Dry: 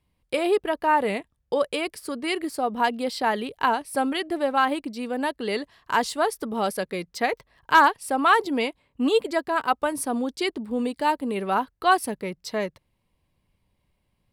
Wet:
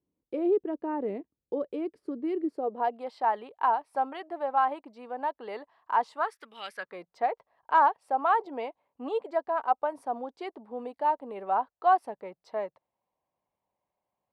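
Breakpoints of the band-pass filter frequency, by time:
band-pass filter, Q 2.4
2.47 s 330 Hz
3.03 s 850 Hz
6.13 s 850 Hz
6.57 s 3.2 kHz
7.01 s 760 Hz

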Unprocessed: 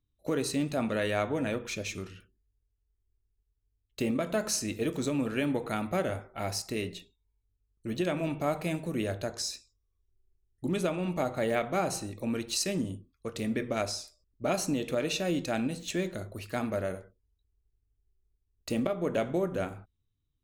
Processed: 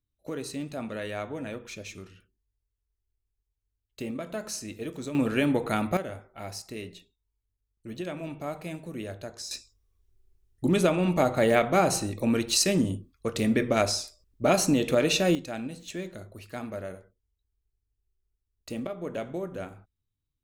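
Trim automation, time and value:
-5 dB
from 5.15 s +5 dB
from 5.97 s -5 dB
from 9.51 s +7 dB
from 15.35 s -4.5 dB

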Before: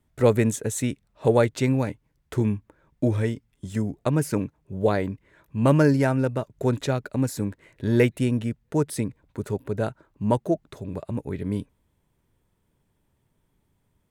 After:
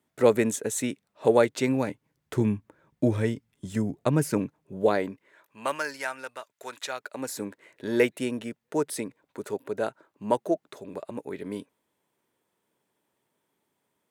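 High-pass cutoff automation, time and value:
1.62 s 240 Hz
2.37 s 120 Hz
4.14 s 120 Hz
5.12 s 290 Hz
5.82 s 1.2 kHz
6.82 s 1.2 kHz
7.41 s 340 Hz

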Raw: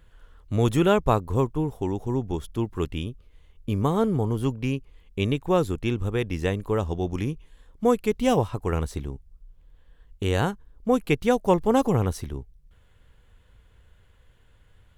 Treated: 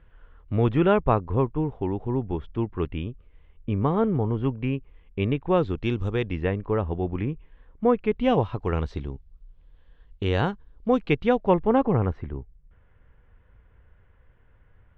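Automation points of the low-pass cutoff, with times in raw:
low-pass 24 dB/octave
5.40 s 2.7 kHz
6.07 s 5.7 kHz
6.48 s 2.5 kHz
7.92 s 2.5 kHz
8.64 s 4.2 kHz
10.99 s 4.2 kHz
11.94 s 2.2 kHz

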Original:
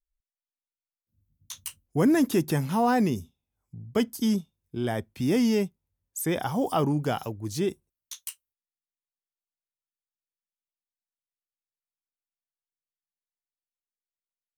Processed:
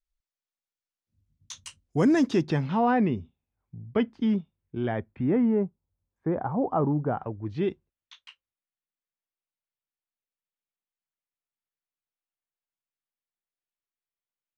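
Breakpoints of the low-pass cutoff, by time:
low-pass 24 dB/octave
2.07 s 7.4 kHz
3.01 s 2.8 kHz
4.87 s 2.8 kHz
5.65 s 1.3 kHz
7.09 s 1.3 kHz
7.67 s 3.3 kHz

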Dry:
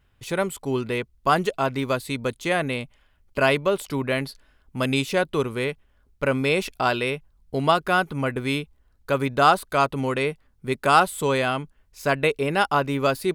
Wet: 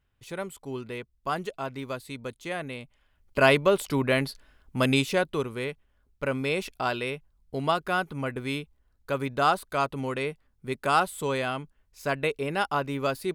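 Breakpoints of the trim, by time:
2.80 s -10 dB
3.46 s +0.5 dB
4.90 s +0.5 dB
5.47 s -6 dB

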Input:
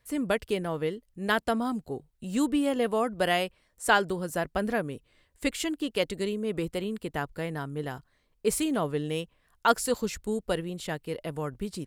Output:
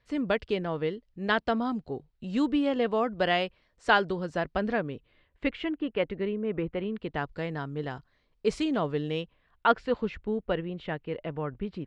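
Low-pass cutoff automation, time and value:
low-pass 24 dB/octave
4.62 s 4.8 kHz
5.85 s 2.5 kHz
6.76 s 2.5 kHz
7.31 s 5.2 kHz
9.03 s 5.2 kHz
9.82 s 3 kHz

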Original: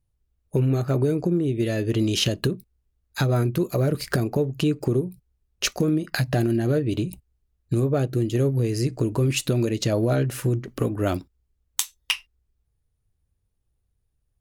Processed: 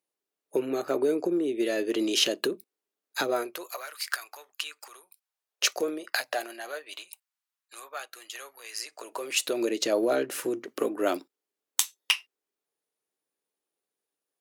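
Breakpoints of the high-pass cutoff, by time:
high-pass 24 dB/octave
3.27 s 320 Hz
3.90 s 1.1 kHz
5.00 s 1.1 kHz
5.76 s 400 Hz
7.09 s 950 Hz
8.76 s 950 Hz
9.68 s 320 Hz

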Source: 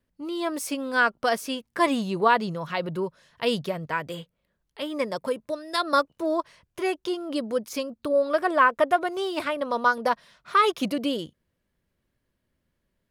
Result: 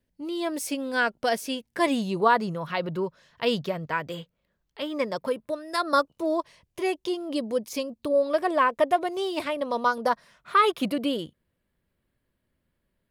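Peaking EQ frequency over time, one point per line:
peaking EQ -9 dB 0.48 oct
2.05 s 1.2 kHz
2.82 s 10 kHz
5.17 s 10 kHz
6.28 s 1.4 kHz
9.80 s 1.4 kHz
10.54 s 6 kHz

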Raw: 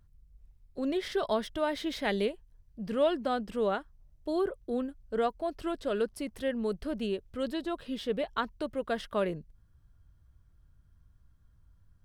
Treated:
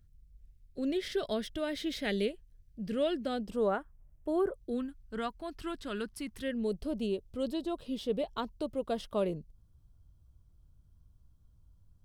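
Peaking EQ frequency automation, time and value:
peaking EQ -14 dB 0.91 oct
3.32 s 960 Hz
3.79 s 4.3 kHz
4.40 s 4.3 kHz
4.83 s 550 Hz
6.33 s 550 Hz
6.80 s 1.7 kHz

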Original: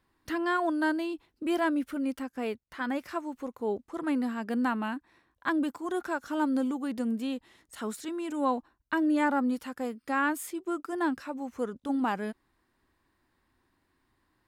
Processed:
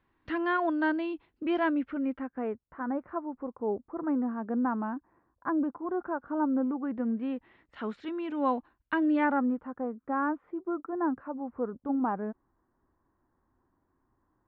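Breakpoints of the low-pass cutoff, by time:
low-pass 24 dB/octave
1.62 s 3.2 kHz
2.77 s 1.3 kHz
6.48 s 1.3 kHz
7.90 s 3.2 kHz
9.14 s 3.2 kHz
9.63 s 1.3 kHz

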